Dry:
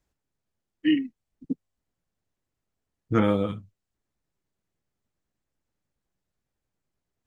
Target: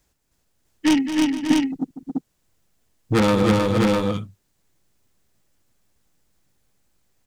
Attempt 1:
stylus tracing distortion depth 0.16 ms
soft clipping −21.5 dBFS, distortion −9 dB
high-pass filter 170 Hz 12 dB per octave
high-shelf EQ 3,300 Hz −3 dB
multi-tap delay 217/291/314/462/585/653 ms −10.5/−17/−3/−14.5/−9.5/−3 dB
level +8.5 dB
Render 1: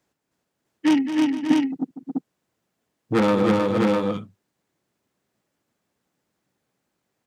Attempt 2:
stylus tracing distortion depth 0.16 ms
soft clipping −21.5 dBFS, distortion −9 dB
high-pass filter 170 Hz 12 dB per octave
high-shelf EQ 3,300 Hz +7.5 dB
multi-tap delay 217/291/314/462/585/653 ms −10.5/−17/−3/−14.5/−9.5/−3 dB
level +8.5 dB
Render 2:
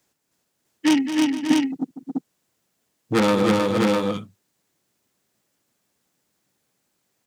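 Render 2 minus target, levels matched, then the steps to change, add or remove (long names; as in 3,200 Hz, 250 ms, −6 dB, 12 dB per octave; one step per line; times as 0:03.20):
125 Hz band −5.5 dB
remove: high-pass filter 170 Hz 12 dB per octave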